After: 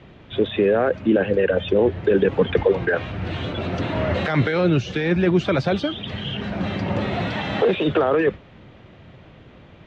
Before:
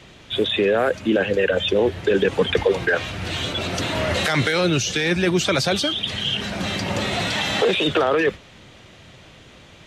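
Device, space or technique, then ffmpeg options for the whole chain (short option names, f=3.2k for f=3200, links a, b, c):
phone in a pocket: -af "lowpass=3.5k,equalizer=f=150:t=o:w=2.9:g=3,highshelf=f=2.3k:g=-10"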